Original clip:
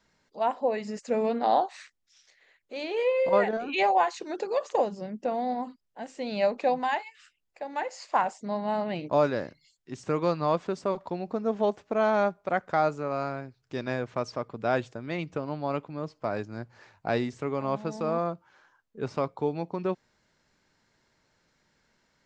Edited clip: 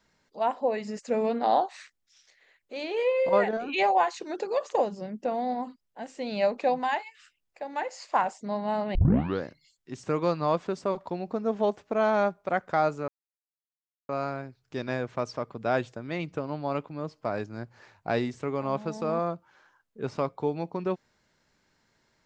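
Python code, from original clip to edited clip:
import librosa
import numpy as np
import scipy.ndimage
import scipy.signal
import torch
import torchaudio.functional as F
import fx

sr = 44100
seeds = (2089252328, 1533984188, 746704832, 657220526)

y = fx.edit(x, sr, fx.tape_start(start_s=8.95, length_s=0.49),
    fx.insert_silence(at_s=13.08, length_s=1.01), tone=tone)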